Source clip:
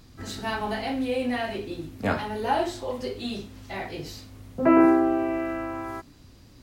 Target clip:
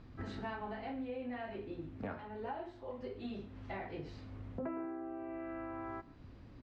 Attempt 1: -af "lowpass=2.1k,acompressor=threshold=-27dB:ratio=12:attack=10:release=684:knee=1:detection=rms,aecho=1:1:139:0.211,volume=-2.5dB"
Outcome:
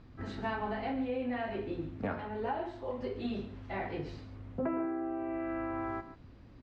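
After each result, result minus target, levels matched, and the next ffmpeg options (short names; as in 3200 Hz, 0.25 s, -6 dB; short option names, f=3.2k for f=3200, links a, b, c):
compressor: peak gain reduction -7 dB; echo-to-direct +8 dB
-af "lowpass=2.1k,acompressor=threshold=-34.5dB:ratio=12:attack=10:release=684:knee=1:detection=rms,aecho=1:1:139:0.211,volume=-2.5dB"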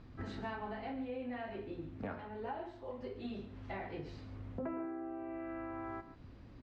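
echo-to-direct +8 dB
-af "lowpass=2.1k,acompressor=threshold=-34.5dB:ratio=12:attack=10:release=684:knee=1:detection=rms,aecho=1:1:139:0.0841,volume=-2.5dB"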